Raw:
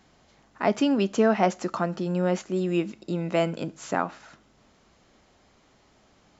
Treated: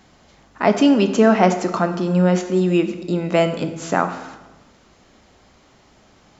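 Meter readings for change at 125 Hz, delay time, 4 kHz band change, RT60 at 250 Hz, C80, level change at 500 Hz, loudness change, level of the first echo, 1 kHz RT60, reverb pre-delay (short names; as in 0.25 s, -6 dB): +9.0 dB, none, +7.5 dB, 1.3 s, 12.5 dB, +7.5 dB, +8.0 dB, none, 1.1 s, 18 ms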